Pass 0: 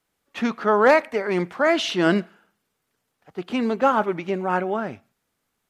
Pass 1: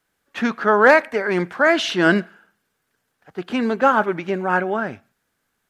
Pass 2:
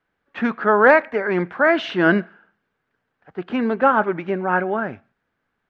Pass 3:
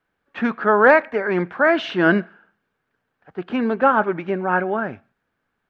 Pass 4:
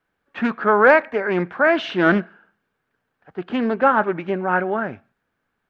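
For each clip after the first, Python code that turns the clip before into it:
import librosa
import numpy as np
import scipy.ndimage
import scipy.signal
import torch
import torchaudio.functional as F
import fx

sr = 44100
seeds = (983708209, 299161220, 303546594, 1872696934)

y1 = fx.peak_eq(x, sr, hz=1600.0, db=8.0, octaves=0.32)
y1 = F.gain(torch.from_numpy(y1), 2.0).numpy()
y2 = scipy.signal.sosfilt(scipy.signal.butter(2, 2400.0, 'lowpass', fs=sr, output='sos'), y1)
y3 = fx.notch(y2, sr, hz=2000.0, q=27.0)
y4 = fx.doppler_dist(y3, sr, depth_ms=0.17)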